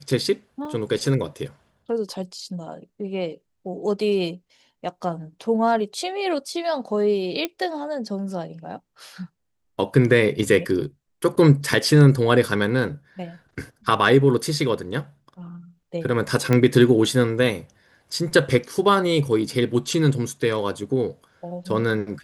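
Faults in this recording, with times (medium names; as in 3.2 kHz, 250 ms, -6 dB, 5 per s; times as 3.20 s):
0.65 s: dropout 2.3 ms
7.45 s: pop -10 dBFS
16.53 s: pop -8 dBFS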